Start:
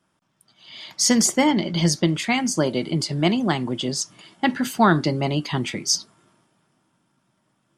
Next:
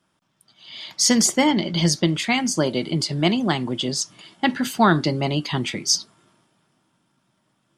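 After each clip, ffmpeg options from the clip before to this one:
-af "equalizer=f=3700:t=o:w=1:g=3.5"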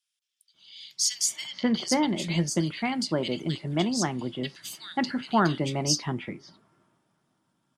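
-filter_complex "[0:a]acrossover=split=2500[s0][s1];[s0]adelay=540[s2];[s2][s1]amix=inputs=2:normalize=0,volume=0.501"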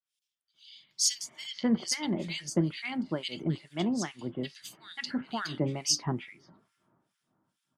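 -filter_complex "[0:a]acrossover=split=1700[s0][s1];[s0]aeval=exprs='val(0)*(1-1/2+1/2*cos(2*PI*2.3*n/s))':c=same[s2];[s1]aeval=exprs='val(0)*(1-1/2-1/2*cos(2*PI*2.3*n/s))':c=same[s3];[s2][s3]amix=inputs=2:normalize=0"

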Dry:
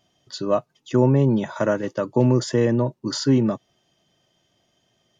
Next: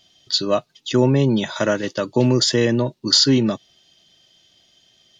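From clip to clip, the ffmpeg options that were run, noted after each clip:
-af "equalizer=f=125:t=o:w=1:g=-6,equalizer=f=250:t=o:w=1:g=-3,equalizer=f=500:t=o:w=1:g=-4,equalizer=f=1000:t=o:w=1:g=-6,equalizer=f=4000:t=o:w=1:g=11,volume=2.11"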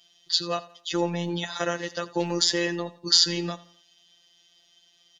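-af "lowshelf=f=450:g=-9.5,afftfilt=real='hypot(re,im)*cos(PI*b)':imag='0':win_size=1024:overlap=0.75,aecho=1:1:86|172|258:0.119|0.0452|0.0172"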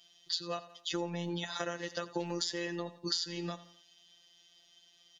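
-af "acompressor=threshold=0.0316:ratio=4,volume=0.75"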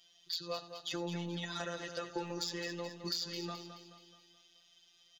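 -filter_complex "[0:a]flanger=delay=3.7:depth=4.6:regen=49:speed=0.71:shape=sinusoidal,asoftclip=type=tanh:threshold=0.0473,asplit=2[s0][s1];[s1]aecho=0:1:214|428|642|856|1070:0.335|0.151|0.0678|0.0305|0.0137[s2];[s0][s2]amix=inputs=2:normalize=0,volume=1.26"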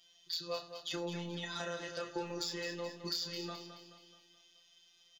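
-filter_complex "[0:a]asplit=2[s0][s1];[s1]adelay=31,volume=0.473[s2];[s0][s2]amix=inputs=2:normalize=0,volume=0.891"

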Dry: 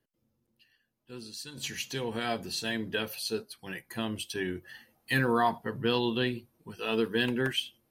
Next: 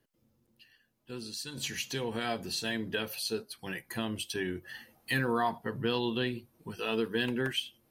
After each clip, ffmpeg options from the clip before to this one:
-af "acompressor=threshold=0.00501:ratio=1.5,volume=1.78"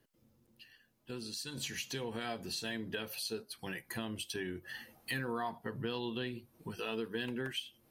-af "acompressor=threshold=0.00631:ratio=2,volume=1.26"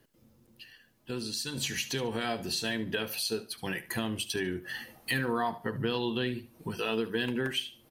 -af "aecho=1:1:72|144|216:0.158|0.0412|0.0107,volume=2.24"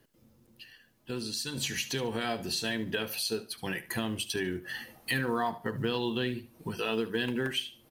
-af "acrusher=bits=9:mode=log:mix=0:aa=0.000001"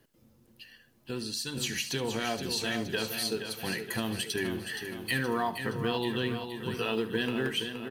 -af "aecho=1:1:471|942|1413|1884|2355|2826:0.398|0.211|0.112|0.0593|0.0314|0.0166"

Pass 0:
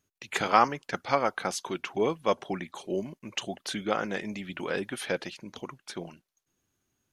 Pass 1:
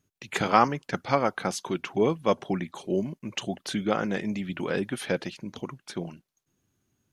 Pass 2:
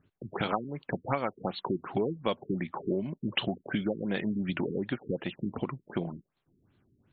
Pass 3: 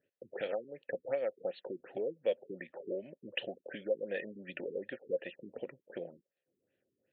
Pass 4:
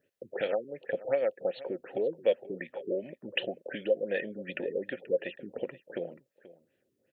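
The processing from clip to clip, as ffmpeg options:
-af "equalizer=f=140:t=o:w=2.6:g=8"
-filter_complex "[0:a]acrossover=split=3600[s0][s1];[s0]acompressor=threshold=0.0178:ratio=5[s2];[s2][s1]amix=inputs=2:normalize=0,afftfilt=real='re*lt(b*sr/1024,430*pow(4500/430,0.5+0.5*sin(2*PI*2.7*pts/sr)))':imag='im*lt(b*sr/1024,430*pow(4500/430,0.5+0.5*sin(2*PI*2.7*pts/sr)))':win_size=1024:overlap=0.75,volume=2.24"
-filter_complex "[0:a]asplit=3[s0][s1][s2];[s0]bandpass=f=530:t=q:w=8,volume=1[s3];[s1]bandpass=f=1840:t=q:w=8,volume=0.501[s4];[s2]bandpass=f=2480:t=q:w=8,volume=0.355[s5];[s3][s4][s5]amix=inputs=3:normalize=0,volume=1.68"
-af "aecho=1:1:482:0.126,volume=2"

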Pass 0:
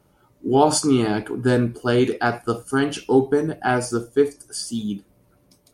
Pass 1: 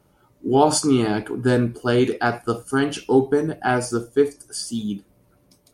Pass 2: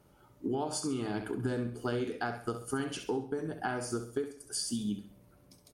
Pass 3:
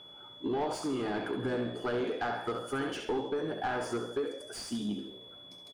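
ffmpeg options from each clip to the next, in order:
-af anull
-filter_complex "[0:a]acompressor=threshold=0.0447:ratio=12,asplit=2[s0][s1];[s1]aecho=0:1:67|134|201|268:0.316|0.126|0.0506|0.0202[s2];[s0][s2]amix=inputs=2:normalize=0,volume=0.668"
-filter_complex "[0:a]aeval=exprs='val(0)+0.00251*sin(2*PI*3400*n/s)':c=same,asplit=6[s0][s1][s2][s3][s4][s5];[s1]adelay=81,afreqshift=59,volume=0.211[s6];[s2]adelay=162,afreqshift=118,volume=0.0989[s7];[s3]adelay=243,afreqshift=177,volume=0.0468[s8];[s4]adelay=324,afreqshift=236,volume=0.0219[s9];[s5]adelay=405,afreqshift=295,volume=0.0104[s10];[s0][s6][s7][s8][s9][s10]amix=inputs=6:normalize=0,asplit=2[s11][s12];[s12]highpass=f=720:p=1,volume=10,asoftclip=type=tanh:threshold=0.112[s13];[s11][s13]amix=inputs=2:normalize=0,lowpass=f=1300:p=1,volume=0.501,volume=0.708"

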